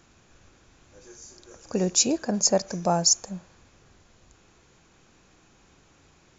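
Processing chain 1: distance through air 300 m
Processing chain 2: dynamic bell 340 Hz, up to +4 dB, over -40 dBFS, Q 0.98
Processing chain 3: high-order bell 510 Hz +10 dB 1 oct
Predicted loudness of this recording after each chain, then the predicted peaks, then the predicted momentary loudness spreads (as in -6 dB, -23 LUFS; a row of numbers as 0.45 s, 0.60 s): -29.0 LUFS, -22.5 LUFS, -20.0 LUFS; -11.5 dBFS, -6.5 dBFS, -2.5 dBFS; 13 LU, 11 LU, 8 LU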